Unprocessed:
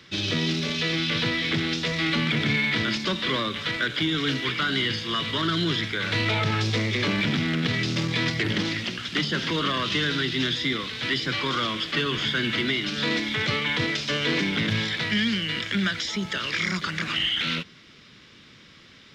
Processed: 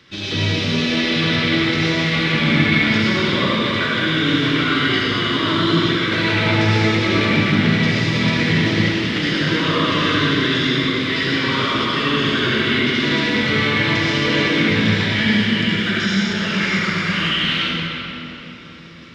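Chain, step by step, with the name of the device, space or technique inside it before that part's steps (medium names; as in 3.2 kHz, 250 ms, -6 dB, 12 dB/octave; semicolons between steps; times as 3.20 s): swimming-pool hall (reverberation RT60 3.6 s, pre-delay 61 ms, DRR -8 dB; treble shelf 4.8 kHz -4.5 dB)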